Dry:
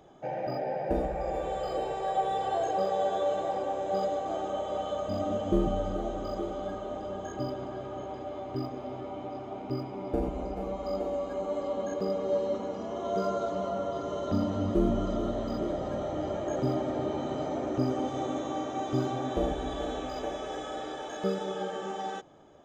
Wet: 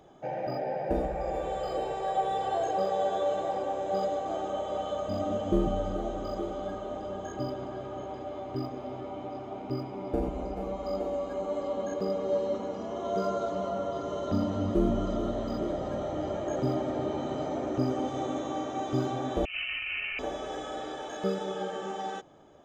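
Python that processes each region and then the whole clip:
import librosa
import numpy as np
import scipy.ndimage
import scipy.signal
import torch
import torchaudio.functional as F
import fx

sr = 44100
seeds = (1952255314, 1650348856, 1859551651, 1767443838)

y = fx.chain(x, sr, fx.highpass(hz=44.0, slope=12),
    fx.freq_invert(carrier_hz=3000),
    fx.over_compress(threshold_db=-34.0, ratio=-0.5), at=(19.45, 20.19))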